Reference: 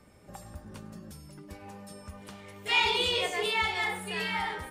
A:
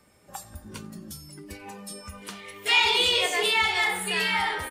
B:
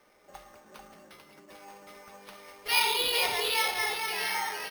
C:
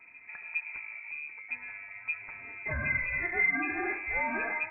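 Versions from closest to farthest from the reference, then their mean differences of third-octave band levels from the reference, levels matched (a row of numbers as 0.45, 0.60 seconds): A, B, C; 4.0, 7.0, 16.0 decibels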